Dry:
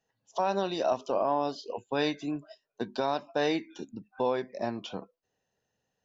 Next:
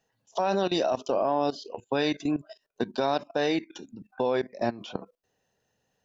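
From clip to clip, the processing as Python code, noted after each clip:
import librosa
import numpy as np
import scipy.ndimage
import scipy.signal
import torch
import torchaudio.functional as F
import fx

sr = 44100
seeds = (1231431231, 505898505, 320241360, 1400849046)

y = fx.dynamic_eq(x, sr, hz=1000.0, q=2.8, threshold_db=-43.0, ratio=4.0, max_db=-4)
y = fx.level_steps(y, sr, step_db=17)
y = F.gain(torch.from_numpy(y), 9.0).numpy()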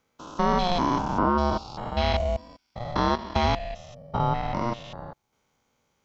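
y = fx.spec_steps(x, sr, hold_ms=200)
y = y * np.sin(2.0 * np.pi * 360.0 * np.arange(len(y)) / sr)
y = F.gain(torch.from_numpy(y), 8.0).numpy()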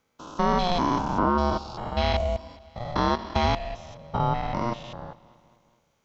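y = fx.echo_feedback(x, sr, ms=211, feedback_pct=59, wet_db=-21.5)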